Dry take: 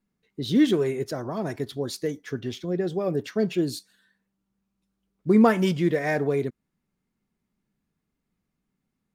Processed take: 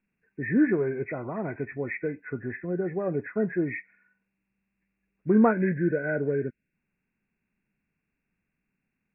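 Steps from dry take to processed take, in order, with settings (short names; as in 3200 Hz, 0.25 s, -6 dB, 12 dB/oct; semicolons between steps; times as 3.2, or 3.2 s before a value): nonlinear frequency compression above 1400 Hz 4:1; spectral gain 5.52–6.74, 660–1400 Hz -13 dB; treble ducked by the level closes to 2100 Hz, closed at -21.5 dBFS; gain -2.5 dB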